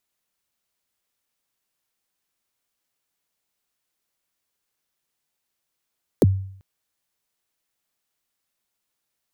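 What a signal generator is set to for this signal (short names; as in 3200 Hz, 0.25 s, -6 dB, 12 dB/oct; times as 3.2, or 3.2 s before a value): kick drum length 0.39 s, from 560 Hz, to 96 Hz, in 29 ms, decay 0.61 s, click on, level -9 dB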